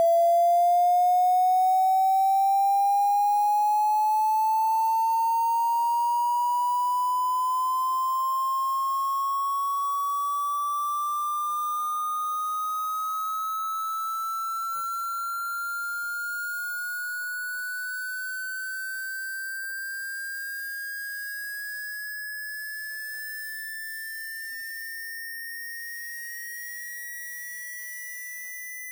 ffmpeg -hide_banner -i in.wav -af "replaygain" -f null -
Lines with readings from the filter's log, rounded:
track_gain = +6.1 dB
track_peak = 0.105